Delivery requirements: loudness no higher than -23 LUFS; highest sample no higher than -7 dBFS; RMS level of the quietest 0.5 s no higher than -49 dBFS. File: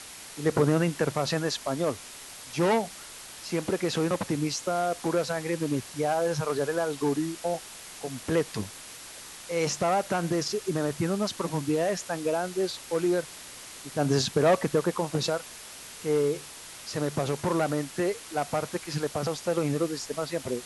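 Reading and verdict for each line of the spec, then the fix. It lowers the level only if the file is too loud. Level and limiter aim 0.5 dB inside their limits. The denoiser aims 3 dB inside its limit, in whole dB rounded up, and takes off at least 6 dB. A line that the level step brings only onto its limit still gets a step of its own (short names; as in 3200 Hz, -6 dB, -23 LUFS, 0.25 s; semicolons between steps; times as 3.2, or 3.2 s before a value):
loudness -28.5 LUFS: OK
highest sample -12.0 dBFS: OK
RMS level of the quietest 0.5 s -44 dBFS: fail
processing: denoiser 8 dB, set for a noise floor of -44 dBFS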